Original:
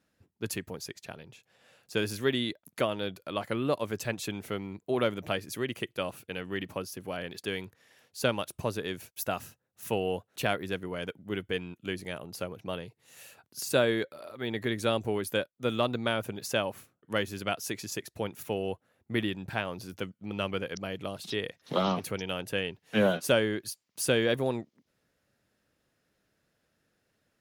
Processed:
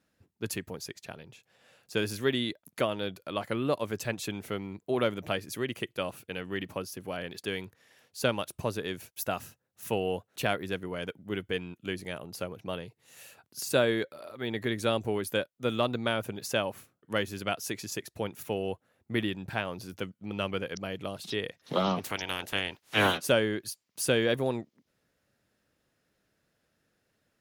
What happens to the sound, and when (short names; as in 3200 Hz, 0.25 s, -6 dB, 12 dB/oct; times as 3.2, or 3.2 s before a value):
22.03–23.17 spectral limiter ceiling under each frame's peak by 21 dB